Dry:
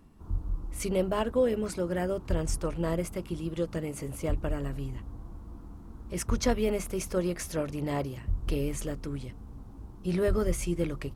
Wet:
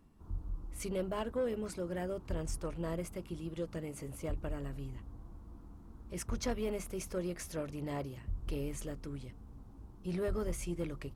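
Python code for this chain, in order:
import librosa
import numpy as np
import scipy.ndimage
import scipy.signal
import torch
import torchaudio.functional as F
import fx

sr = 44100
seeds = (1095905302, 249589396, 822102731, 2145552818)

y = 10.0 ** (-19.5 / 20.0) * np.tanh(x / 10.0 ** (-19.5 / 20.0))
y = y * 10.0 ** (-7.0 / 20.0)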